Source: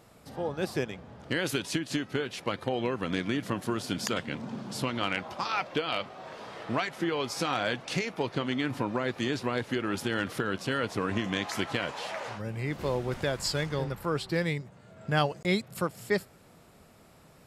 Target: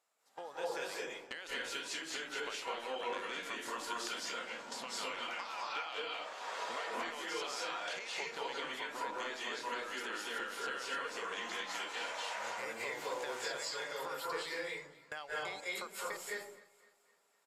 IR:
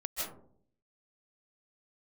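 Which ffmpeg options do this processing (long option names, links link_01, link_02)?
-filter_complex "[0:a]highpass=790,agate=range=-22dB:threshold=-48dB:ratio=16:detection=peak,acrossover=split=4800[link_01][link_02];[link_02]acompressor=threshold=-47dB:ratio=4:attack=1:release=60[link_03];[link_01][link_03]amix=inputs=2:normalize=0,equalizer=frequency=7100:width=3:gain=7,acompressor=threshold=-45dB:ratio=6,aecho=1:1:256|512|768|1024:0.0944|0.0463|0.0227|0.0111[link_04];[1:a]atrim=start_sample=2205,afade=type=out:start_time=0.4:duration=0.01,atrim=end_sample=18081,asetrate=32634,aresample=44100[link_05];[link_04][link_05]afir=irnorm=-1:irlink=0,volume=2.5dB"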